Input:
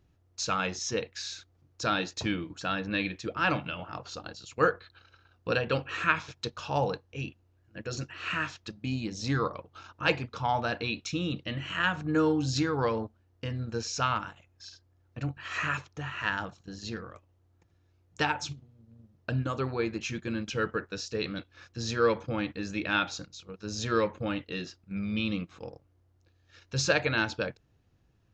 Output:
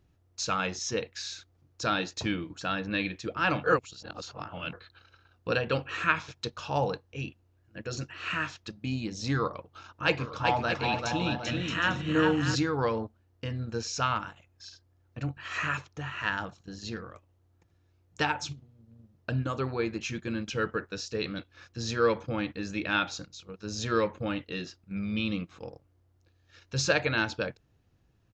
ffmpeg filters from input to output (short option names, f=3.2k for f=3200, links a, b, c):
-filter_complex "[0:a]asplit=3[a][b][c];[a]afade=t=out:st=10.18:d=0.02[d];[b]aecho=1:1:390|624|764.4|848.6|899.2:0.631|0.398|0.251|0.158|0.1,afade=t=in:st=10.18:d=0.02,afade=t=out:st=12.54:d=0.02[e];[c]afade=t=in:st=12.54:d=0.02[f];[d][e][f]amix=inputs=3:normalize=0,asplit=3[g][h][i];[g]atrim=end=3.642[j];[h]atrim=start=3.638:end=4.732,asetpts=PTS-STARTPTS,areverse[k];[i]atrim=start=4.728[l];[j][k]acrossfade=d=0.004:c1=hsin:c2=hsin[m];[m][l]acrossfade=d=0.004:c1=hsin:c2=hsin"